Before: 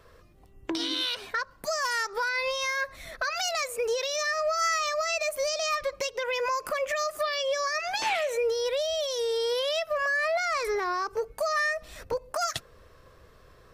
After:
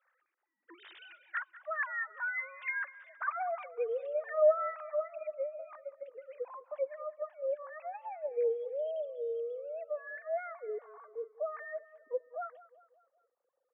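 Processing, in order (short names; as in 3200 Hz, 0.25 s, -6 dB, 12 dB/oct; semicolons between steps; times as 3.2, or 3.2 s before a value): sine-wave speech; band-pass sweep 1700 Hz -> 310 Hz, 2.64–5.24; steep high-pass 220 Hz; feedback echo 0.194 s, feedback 49%, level -18 dB; gain +1.5 dB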